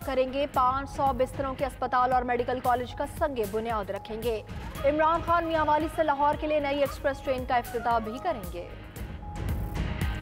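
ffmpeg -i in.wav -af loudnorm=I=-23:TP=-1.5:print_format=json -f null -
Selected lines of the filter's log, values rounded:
"input_i" : "-28.4",
"input_tp" : "-14.6",
"input_lra" : "5.2",
"input_thresh" : "-38.8",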